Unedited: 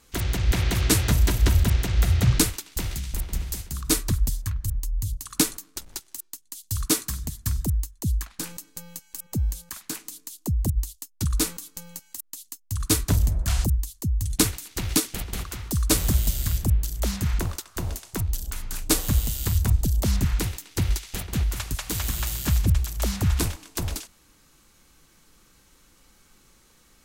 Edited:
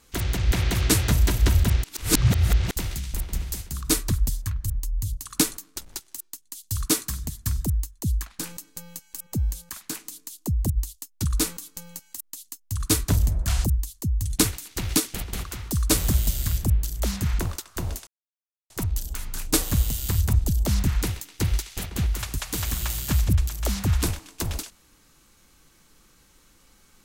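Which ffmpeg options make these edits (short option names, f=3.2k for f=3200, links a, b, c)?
-filter_complex "[0:a]asplit=4[a][b][c][d];[a]atrim=end=1.842[e];[b]atrim=start=1.838:end=2.712,asetpts=PTS-STARTPTS,areverse[f];[c]atrim=start=2.708:end=18.07,asetpts=PTS-STARTPTS,afade=t=out:st=15.358:d=0.004:c=hsin,apad=pad_dur=0.63[g];[d]atrim=start=18.07,asetpts=PTS-STARTPTS,afade=t=in:d=0.004:c=hsin[h];[e][f]acrossfade=d=0.004:c1=hsin:c2=hsin[i];[g][h]concat=n=2:v=0:a=1[j];[i][j]acrossfade=d=0.004:c1=hsin:c2=hsin"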